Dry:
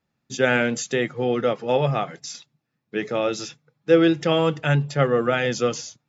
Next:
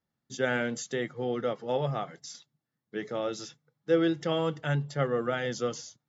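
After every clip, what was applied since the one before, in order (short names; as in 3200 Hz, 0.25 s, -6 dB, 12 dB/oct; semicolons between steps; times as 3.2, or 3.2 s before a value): notch 2500 Hz, Q 5.5; gain -8.5 dB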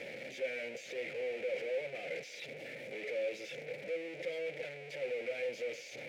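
infinite clipping; double band-pass 1100 Hz, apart 2.1 oct; gain +1 dB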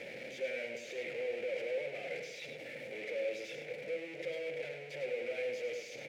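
echo 0.102 s -7.5 dB; on a send at -12.5 dB: reverb RT60 2.0 s, pre-delay 22 ms; on the sum: gain -1 dB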